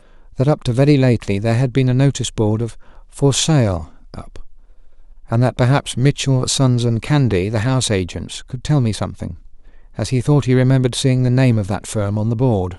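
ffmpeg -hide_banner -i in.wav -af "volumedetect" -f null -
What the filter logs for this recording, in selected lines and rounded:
mean_volume: -16.8 dB
max_volume: -1.3 dB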